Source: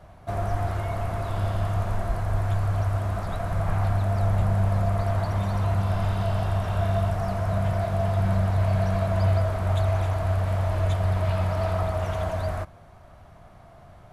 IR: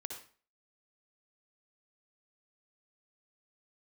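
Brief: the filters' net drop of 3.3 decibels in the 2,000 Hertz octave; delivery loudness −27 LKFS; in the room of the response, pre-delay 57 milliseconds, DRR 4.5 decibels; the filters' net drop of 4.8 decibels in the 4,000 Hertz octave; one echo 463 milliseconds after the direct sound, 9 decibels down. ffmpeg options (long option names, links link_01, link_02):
-filter_complex "[0:a]equalizer=frequency=2000:width_type=o:gain=-3.5,equalizer=frequency=4000:width_type=o:gain=-5,aecho=1:1:463:0.355,asplit=2[link_01][link_02];[1:a]atrim=start_sample=2205,adelay=57[link_03];[link_02][link_03]afir=irnorm=-1:irlink=0,volume=-2.5dB[link_04];[link_01][link_04]amix=inputs=2:normalize=0,volume=-0.5dB"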